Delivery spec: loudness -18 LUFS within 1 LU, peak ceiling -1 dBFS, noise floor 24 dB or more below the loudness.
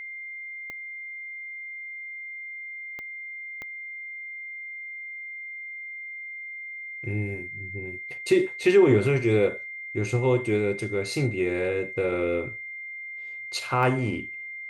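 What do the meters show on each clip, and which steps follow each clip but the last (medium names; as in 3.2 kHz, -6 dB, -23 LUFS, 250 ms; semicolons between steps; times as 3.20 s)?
clicks found 4; steady tone 2.1 kHz; tone level -35 dBFS; loudness -28.0 LUFS; peak level -8.5 dBFS; loudness target -18.0 LUFS
-> de-click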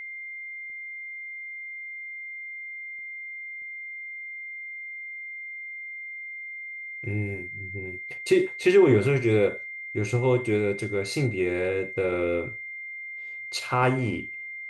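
clicks found 0; steady tone 2.1 kHz; tone level -35 dBFS
-> band-stop 2.1 kHz, Q 30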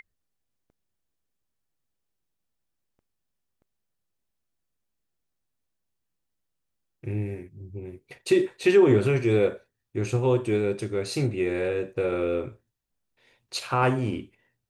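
steady tone not found; loudness -25.0 LUFS; peak level -9.0 dBFS; loudness target -18.0 LUFS
-> trim +7 dB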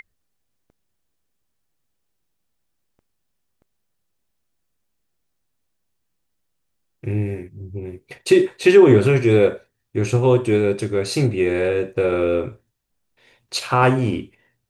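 loudness -18.0 LUFS; peak level -2.0 dBFS; noise floor -73 dBFS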